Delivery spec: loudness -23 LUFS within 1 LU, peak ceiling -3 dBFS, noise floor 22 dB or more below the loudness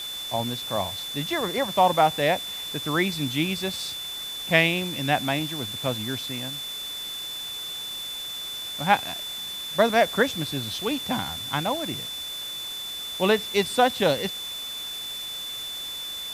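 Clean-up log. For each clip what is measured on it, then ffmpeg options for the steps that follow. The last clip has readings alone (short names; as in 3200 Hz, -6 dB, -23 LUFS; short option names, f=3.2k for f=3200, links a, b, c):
steady tone 3500 Hz; tone level -32 dBFS; noise floor -34 dBFS; noise floor target -48 dBFS; loudness -26.0 LUFS; peak -3.0 dBFS; loudness target -23.0 LUFS
-> -af "bandreject=f=3.5k:w=30"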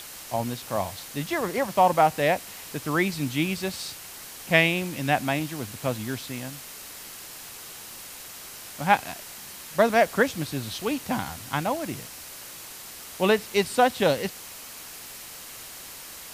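steady tone none; noise floor -42 dBFS; noise floor target -48 dBFS
-> -af "afftdn=nr=6:nf=-42"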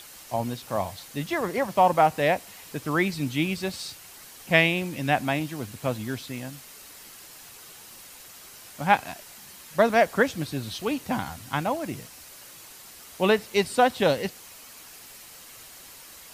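noise floor -47 dBFS; noise floor target -48 dBFS
-> -af "afftdn=nr=6:nf=-47"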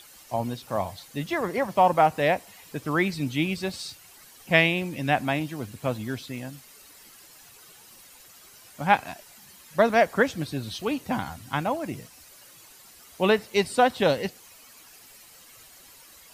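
noise floor -51 dBFS; loudness -25.5 LUFS; peak -3.5 dBFS; loudness target -23.0 LUFS
-> -af "volume=2.5dB,alimiter=limit=-3dB:level=0:latency=1"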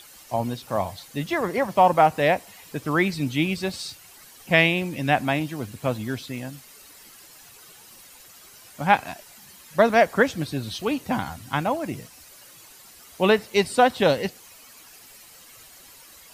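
loudness -23.5 LUFS; peak -3.0 dBFS; noise floor -49 dBFS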